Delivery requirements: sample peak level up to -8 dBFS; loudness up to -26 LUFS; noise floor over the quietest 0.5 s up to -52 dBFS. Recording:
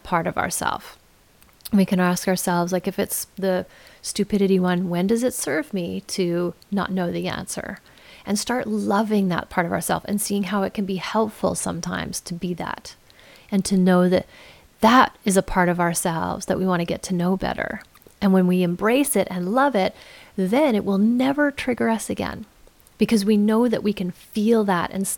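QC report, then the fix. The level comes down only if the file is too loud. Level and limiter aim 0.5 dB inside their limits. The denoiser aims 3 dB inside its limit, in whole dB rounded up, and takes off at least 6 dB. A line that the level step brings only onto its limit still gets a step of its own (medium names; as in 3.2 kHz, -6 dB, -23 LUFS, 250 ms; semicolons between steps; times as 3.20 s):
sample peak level -3.5 dBFS: fail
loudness -22.0 LUFS: fail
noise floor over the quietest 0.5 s -54 dBFS: pass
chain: trim -4.5 dB; peak limiter -8.5 dBFS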